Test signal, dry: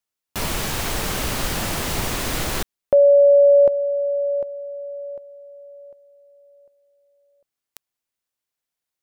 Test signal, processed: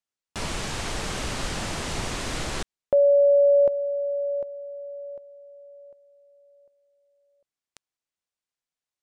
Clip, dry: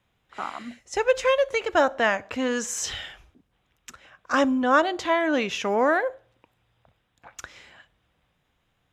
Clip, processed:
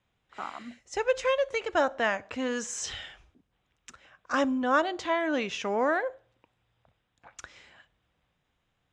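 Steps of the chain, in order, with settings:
low-pass filter 9,000 Hz 24 dB per octave
level −5 dB

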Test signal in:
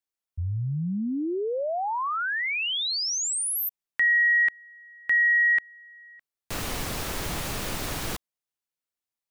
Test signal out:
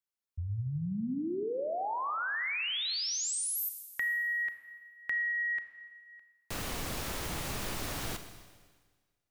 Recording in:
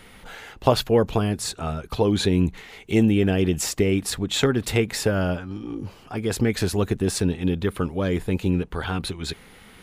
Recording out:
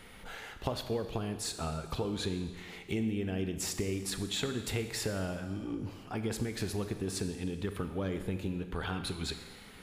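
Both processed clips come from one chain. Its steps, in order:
downward compressor 5 to 1, threshold −27 dBFS
four-comb reverb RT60 1.5 s, combs from 28 ms, DRR 8 dB
level −5 dB

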